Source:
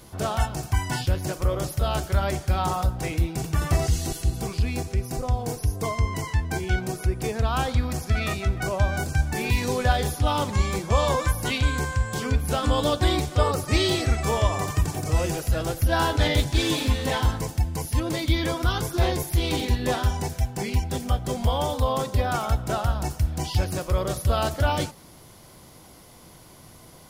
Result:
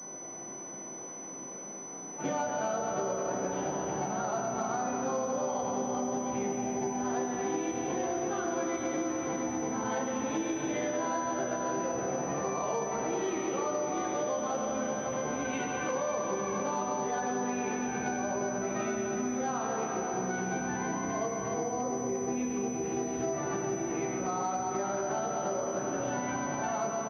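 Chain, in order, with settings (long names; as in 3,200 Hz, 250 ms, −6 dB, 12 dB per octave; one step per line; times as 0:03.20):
played backwards from end to start
high-frequency loss of the air 93 metres
double-tracking delay 15 ms −5 dB
four-comb reverb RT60 3.9 s, combs from 25 ms, DRR −1.5 dB
in parallel at +1 dB: brickwall limiter −11.5 dBFS, peak gain reduction 7.5 dB
on the sum: high-pass filter 200 Hz 24 dB per octave
high-shelf EQ 2,100 Hz −10.5 dB
tuned comb filter 390 Hz, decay 0.51 s, mix 60%
downward compressor 6 to 1, threshold −34 dBFS, peak gain reduction 14 dB
switching amplifier with a slow clock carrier 6,000 Hz
level +4 dB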